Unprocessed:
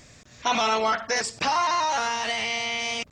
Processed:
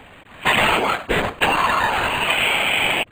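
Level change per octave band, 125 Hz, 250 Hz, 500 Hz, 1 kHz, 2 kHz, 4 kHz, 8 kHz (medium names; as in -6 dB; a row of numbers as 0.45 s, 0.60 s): +15.5 dB, +8.0 dB, +5.5 dB, +4.0 dB, +10.0 dB, +7.0 dB, -1.5 dB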